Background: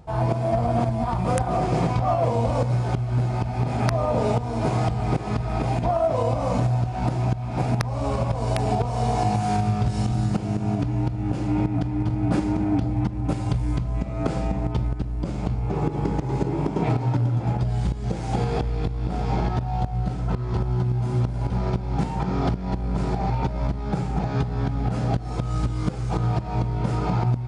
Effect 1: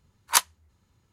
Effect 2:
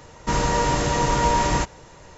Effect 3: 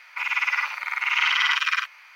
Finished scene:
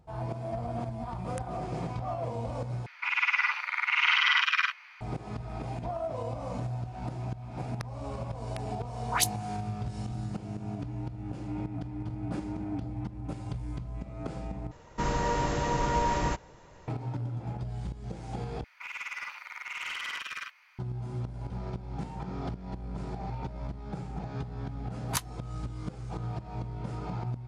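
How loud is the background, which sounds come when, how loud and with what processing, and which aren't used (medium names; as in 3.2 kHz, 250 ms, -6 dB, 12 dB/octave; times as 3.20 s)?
background -12.5 dB
2.86 s: replace with 3 -2.5 dB + three-band isolator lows -15 dB, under 560 Hz, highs -15 dB, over 5.6 kHz
8.76 s: add 1 -5.5 dB + phase dispersion highs, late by 108 ms, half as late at 1.6 kHz
14.71 s: replace with 2 -7 dB + treble shelf 3.8 kHz -8 dB
18.64 s: replace with 3 -12 dB + saturation -19 dBFS
24.80 s: add 1 -12 dB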